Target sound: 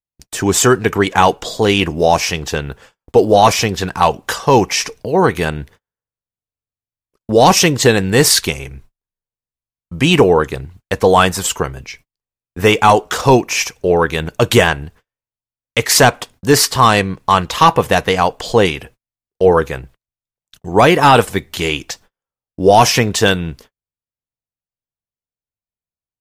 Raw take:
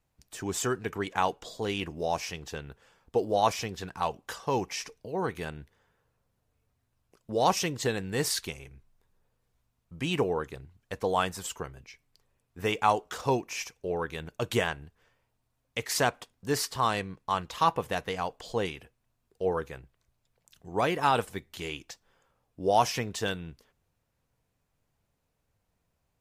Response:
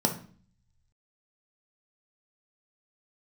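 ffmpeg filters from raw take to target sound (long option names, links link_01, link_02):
-af "agate=range=-41dB:threshold=-58dB:ratio=16:detection=peak,apsyclip=20dB,volume=-1.5dB"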